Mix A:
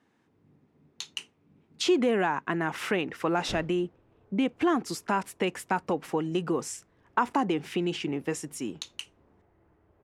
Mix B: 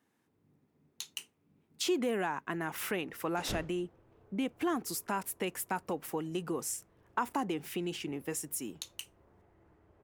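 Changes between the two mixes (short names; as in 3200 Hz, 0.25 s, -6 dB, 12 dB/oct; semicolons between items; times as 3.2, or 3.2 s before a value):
speech -7.5 dB; master: remove air absorption 80 m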